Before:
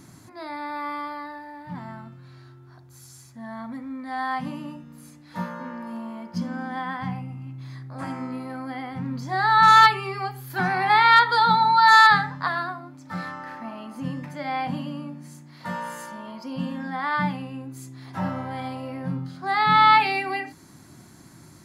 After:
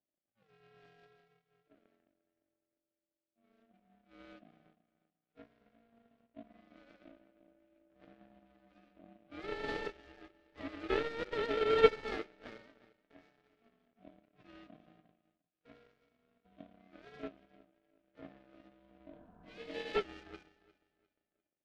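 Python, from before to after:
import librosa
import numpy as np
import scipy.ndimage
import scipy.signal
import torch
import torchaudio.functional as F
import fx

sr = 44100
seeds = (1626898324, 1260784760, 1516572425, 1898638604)

y = fx.cvsd(x, sr, bps=16000)
y = fx.hum_notches(y, sr, base_hz=50, count=3)
y = fx.echo_feedback(y, sr, ms=351, feedback_pct=51, wet_db=-11)
y = fx.power_curve(y, sr, exponent=2.0)
y = fx.spec_repair(y, sr, seeds[0], start_s=19.14, length_s=0.79, low_hz=200.0, high_hz=1300.0, source='before')
y = y * np.sin(2.0 * np.pi * 460.0 * np.arange(len(y)) / sr)
y = fx.graphic_eq(y, sr, hz=(250, 500, 1000), db=(4, 6, -8))
y = fx.upward_expand(y, sr, threshold_db=-42.0, expansion=1.5)
y = y * librosa.db_to_amplitude(1.0)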